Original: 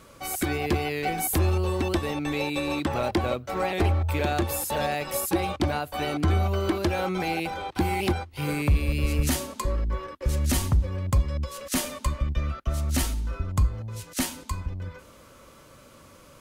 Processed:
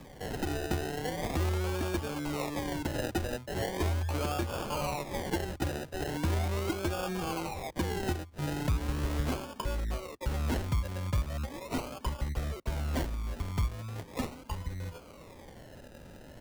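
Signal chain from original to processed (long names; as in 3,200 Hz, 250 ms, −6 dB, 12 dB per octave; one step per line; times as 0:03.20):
sample-and-hold swept by an LFO 31×, swing 60% 0.39 Hz
multiband upward and downward compressor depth 40%
level −7 dB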